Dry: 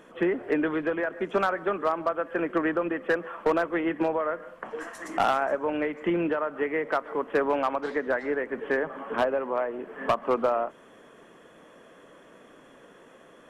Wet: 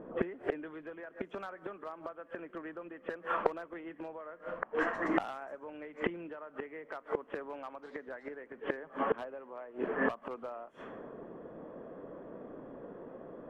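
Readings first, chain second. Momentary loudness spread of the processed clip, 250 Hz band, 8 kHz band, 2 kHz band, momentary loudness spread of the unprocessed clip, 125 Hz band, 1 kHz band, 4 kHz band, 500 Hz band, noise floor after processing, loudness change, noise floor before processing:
14 LU, -10.5 dB, n/a, -9.5 dB, 6 LU, -9.5 dB, -11.0 dB, -12.0 dB, -11.5 dB, -59 dBFS, -12.0 dB, -53 dBFS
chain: low-pass opened by the level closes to 580 Hz, open at -25.5 dBFS; flipped gate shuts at -24 dBFS, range -25 dB; gain +7 dB

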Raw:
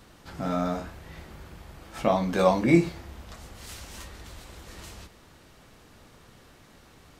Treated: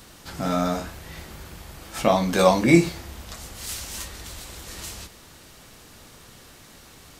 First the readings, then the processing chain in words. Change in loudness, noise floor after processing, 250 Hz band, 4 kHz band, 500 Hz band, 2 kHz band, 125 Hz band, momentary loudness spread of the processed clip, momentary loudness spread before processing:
+2.0 dB, -49 dBFS, +3.5 dB, +9.0 dB, +4.0 dB, +6.0 dB, +3.5 dB, 22 LU, 22 LU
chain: high shelf 3600 Hz +10.5 dB; gain +3.5 dB

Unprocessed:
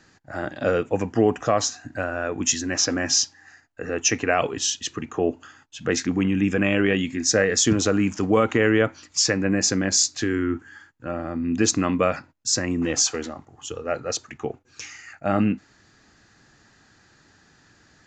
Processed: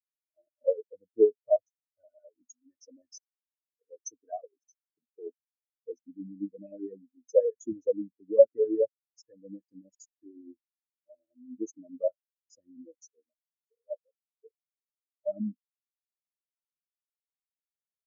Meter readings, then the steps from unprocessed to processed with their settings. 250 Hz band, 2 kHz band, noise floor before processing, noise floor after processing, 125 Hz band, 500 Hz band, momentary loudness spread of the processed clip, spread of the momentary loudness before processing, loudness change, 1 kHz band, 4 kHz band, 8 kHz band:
-17.0 dB, under -40 dB, -58 dBFS, under -85 dBFS, under -25 dB, -4.0 dB, 22 LU, 14 LU, -6.5 dB, under -20 dB, under -35 dB, under -25 dB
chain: LFO low-pass square 9.6 Hz 610–6600 Hz; spectral expander 4:1; gain -5.5 dB

